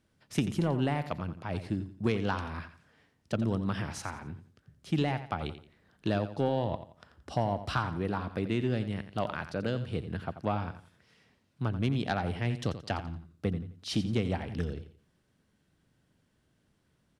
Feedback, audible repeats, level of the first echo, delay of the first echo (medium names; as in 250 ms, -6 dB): 32%, 3, -12.0 dB, 87 ms